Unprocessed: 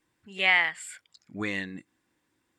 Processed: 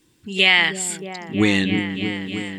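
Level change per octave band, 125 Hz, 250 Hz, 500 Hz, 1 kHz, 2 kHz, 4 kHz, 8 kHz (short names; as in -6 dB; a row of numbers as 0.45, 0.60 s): +18.0, +18.0, +13.0, +5.5, +6.5, +13.5, +16.5 dB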